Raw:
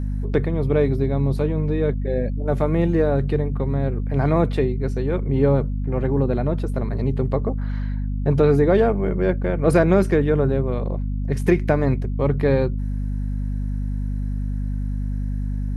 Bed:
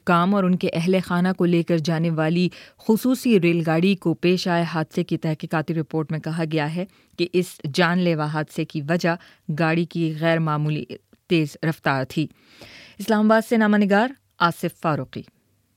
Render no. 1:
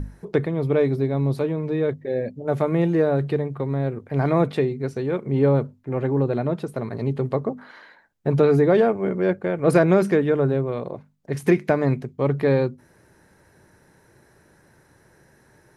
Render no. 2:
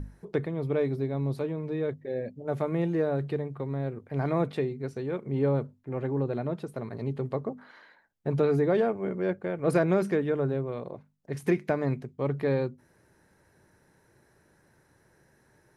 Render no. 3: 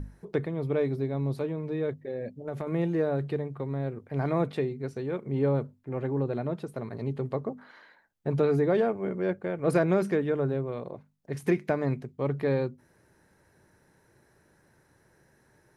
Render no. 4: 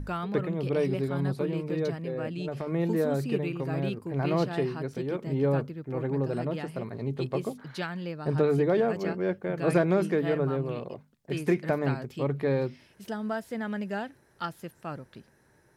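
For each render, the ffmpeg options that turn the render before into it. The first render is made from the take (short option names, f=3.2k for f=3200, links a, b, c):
-af "bandreject=f=50:t=h:w=6,bandreject=f=100:t=h:w=6,bandreject=f=150:t=h:w=6,bandreject=f=200:t=h:w=6,bandreject=f=250:t=h:w=6"
-af "volume=-7.5dB"
-filter_complex "[0:a]asettb=1/sr,asplit=3[a][b][c];[a]atrim=end=2.074[d];[b]atrim=start=2.07:end=2.67,asetpts=PTS-STARTPTS,afade=t=in:d=0.004:c=qsin,afade=t=out:st=0.596:d=0.004:c=qsin,acompressor=threshold=-29dB:ratio=6:attack=3.2:release=140:knee=1:detection=peak[e];[c]atrim=start=2.666[f];[d][e]acrossfade=d=0.004:c1=hsin:c2=qsin[g];[g][f]acrossfade=d=0.004:c1=qsin:c2=hsin"
-filter_complex "[1:a]volume=-15.5dB[a];[0:a][a]amix=inputs=2:normalize=0"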